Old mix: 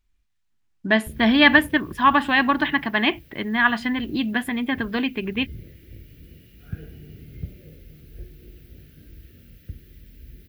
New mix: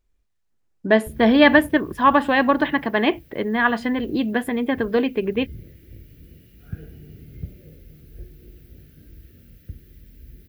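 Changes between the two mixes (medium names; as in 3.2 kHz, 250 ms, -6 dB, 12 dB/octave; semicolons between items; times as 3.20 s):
speech: add peaking EQ 490 Hz +13 dB 0.72 oct; master: add peaking EQ 2.9 kHz -4.5 dB 1.5 oct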